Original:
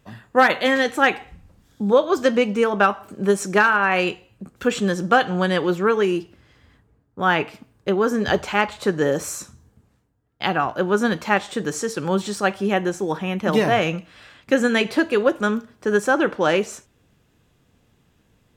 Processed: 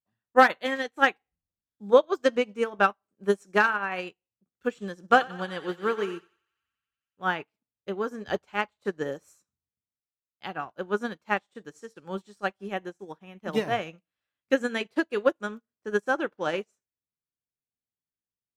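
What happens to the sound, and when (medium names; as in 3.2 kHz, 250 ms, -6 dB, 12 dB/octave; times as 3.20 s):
4.99–7.26 s: thinning echo 91 ms, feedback 83%, high-pass 610 Hz, level -7.5 dB
whole clip: bass shelf 170 Hz -3 dB; upward expansion 2.5:1, over -39 dBFS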